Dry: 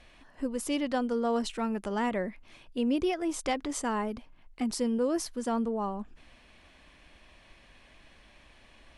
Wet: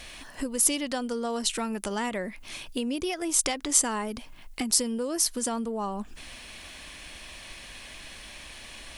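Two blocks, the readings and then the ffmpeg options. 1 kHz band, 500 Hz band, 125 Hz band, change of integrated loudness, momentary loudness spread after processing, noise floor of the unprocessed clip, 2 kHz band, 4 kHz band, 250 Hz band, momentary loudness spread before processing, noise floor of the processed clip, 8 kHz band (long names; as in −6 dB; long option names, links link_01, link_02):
−0.5 dB, −1.5 dB, can't be measured, +4.0 dB, 19 LU, −58 dBFS, +4.0 dB, +9.0 dB, −1.5 dB, 9 LU, −46 dBFS, +16.0 dB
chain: -af "acompressor=threshold=-39dB:ratio=4,crystalizer=i=4.5:c=0,volume=8.5dB"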